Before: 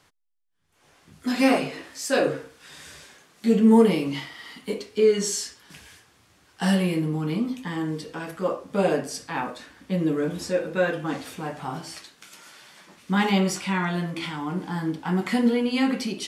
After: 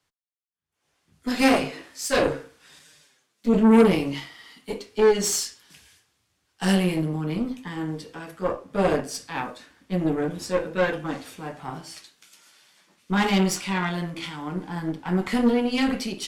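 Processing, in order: Chebyshev shaper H 5 -25 dB, 8 -19 dB, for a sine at -5.5 dBFS; 2.79–3.53 s: touch-sensitive flanger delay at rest 9.8 ms, full sweep at -20.5 dBFS; three bands expanded up and down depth 40%; trim -2.5 dB

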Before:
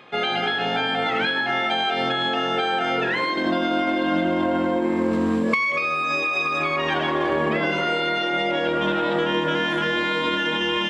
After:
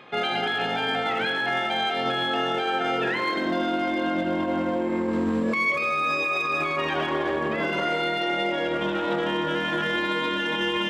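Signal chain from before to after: treble shelf 5.3 kHz -4.5 dB; peak limiter -17.5 dBFS, peak gain reduction 8.5 dB; hard clipper -19 dBFS, distortion -29 dB; on a send: reverberation RT60 1.9 s, pre-delay 38 ms, DRR 9.5 dB

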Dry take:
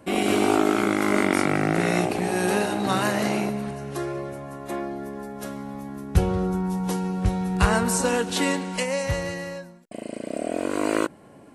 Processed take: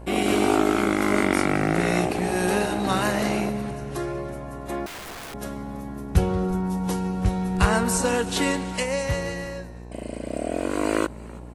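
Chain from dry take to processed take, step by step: frequency-shifting echo 328 ms, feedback 38%, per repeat -95 Hz, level -21 dB; mains buzz 60 Hz, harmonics 18, -40 dBFS -6 dB/octave; 4.86–5.34 s: integer overflow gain 32.5 dB

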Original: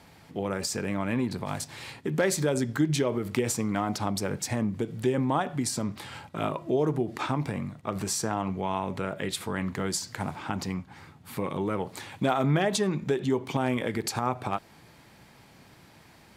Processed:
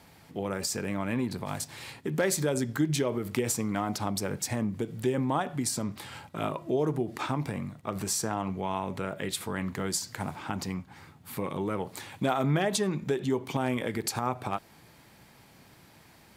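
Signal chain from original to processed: treble shelf 11 kHz +9 dB; trim -2 dB

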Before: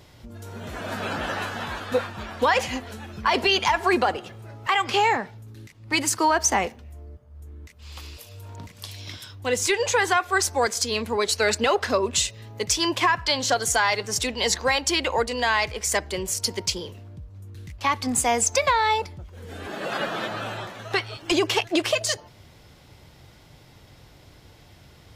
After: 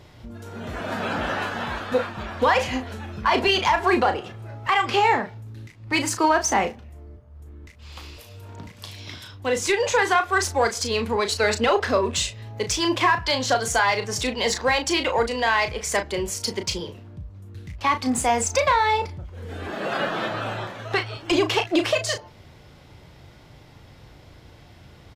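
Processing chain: treble shelf 5 kHz -9 dB; in parallel at -10 dB: hard clipper -23 dBFS, distortion -8 dB; on the sum: doubling 35 ms -8 dB

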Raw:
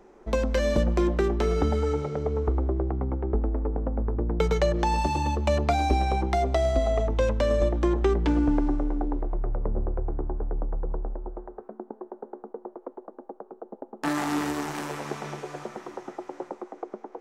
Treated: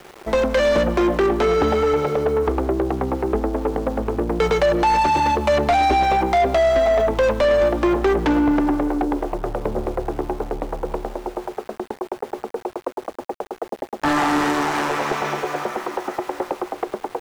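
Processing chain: overdrive pedal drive 24 dB, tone 2.4 kHz, clips at -8.5 dBFS; small samples zeroed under -37.5 dBFS

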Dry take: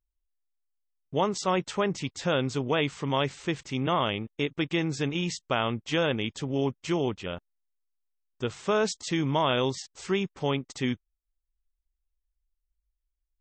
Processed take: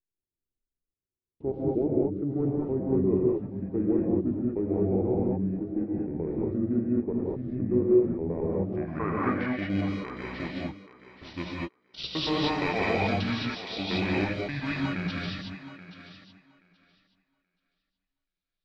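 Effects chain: slices played last to first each 84 ms, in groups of 6; bass shelf 140 Hz -10.5 dB; in parallel at -9 dB: sample-and-hold 36×; on the sum: low-pass sweep 520 Hz -> 5.5 kHz, 5.95–7.04 s; wide varispeed 0.719×; on a send: thinning echo 828 ms, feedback 17%, high-pass 170 Hz, level -13 dB; on the sum: gated-style reverb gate 250 ms rising, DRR -4.5 dB; trim -6.5 dB

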